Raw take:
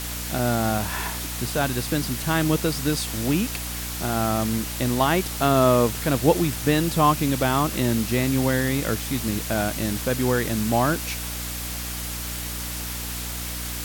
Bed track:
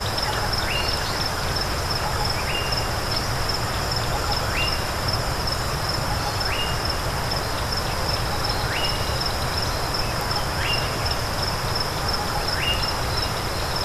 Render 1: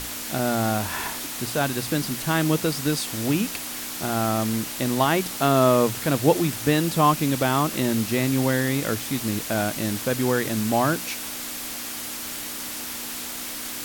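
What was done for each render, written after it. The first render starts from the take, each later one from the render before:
mains-hum notches 60/120/180 Hz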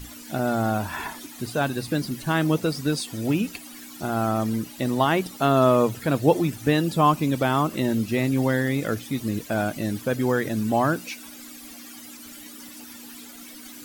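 broadband denoise 15 dB, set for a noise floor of −33 dBFS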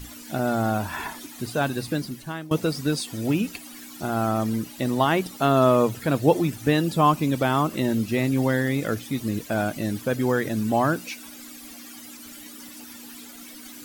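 0:01.84–0:02.51: fade out, to −21 dB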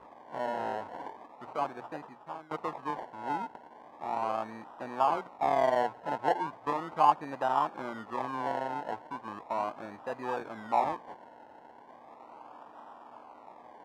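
sample-and-hold swept by an LFO 29×, swing 60% 0.37 Hz
resonant band-pass 890 Hz, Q 2.8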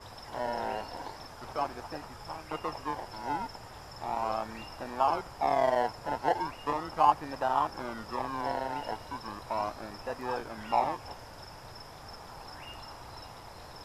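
mix in bed track −24 dB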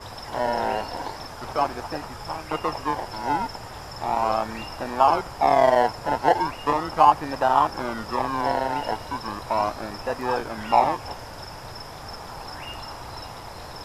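level +9 dB
brickwall limiter −3 dBFS, peak gain reduction 2.5 dB

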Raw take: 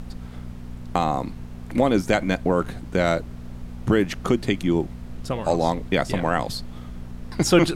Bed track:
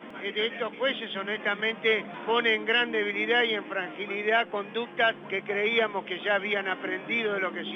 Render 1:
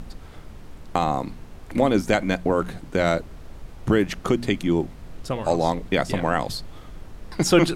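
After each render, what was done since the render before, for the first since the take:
hum removal 60 Hz, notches 4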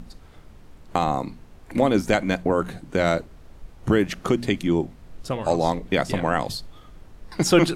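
noise reduction from a noise print 6 dB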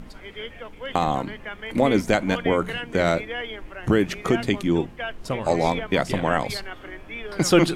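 mix in bed track −7.5 dB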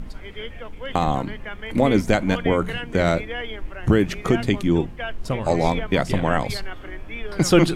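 low-shelf EQ 130 Hz +10 dB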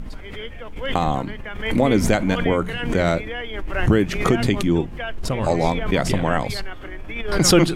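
background raised ahead of every attack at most 59 dB per second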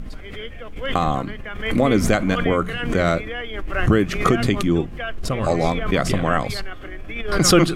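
notch filter 910 Hz, Q 5.8
dynamic equaliser 1,200 Hz, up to +6 dB, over −41 dBFS, Q 2.9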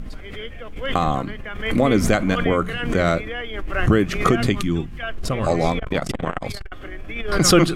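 0:04.52–0:05.03: parametric band 550 Hz −11 dB 1.4 octaves
0:05.79–0:06.72: saturating transformer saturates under 350 Hz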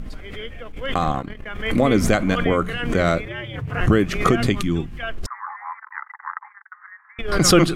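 0:00.63–0:01.50: transient designer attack −3 dB, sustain −12 dB
0:03.25–0:03.81: ring modulation 120 Hz
0:05.26–0:07.19: Chebyshev band-pass filter 860–2,000 Hz, order 5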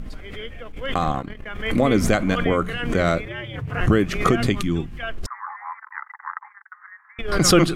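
level −1 dB

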